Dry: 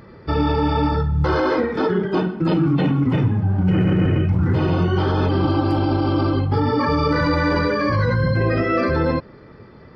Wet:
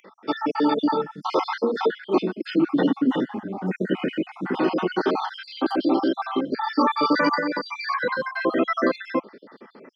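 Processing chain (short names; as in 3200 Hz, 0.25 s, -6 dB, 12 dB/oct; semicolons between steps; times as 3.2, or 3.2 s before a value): random spectral dropouts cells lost 54%; 7.39–7.85 compressor, threshold -23 dBFS, peak gain reduction 7.5 dB; steep high-pass 220 Hz 36 dB/oct; gain +2 dB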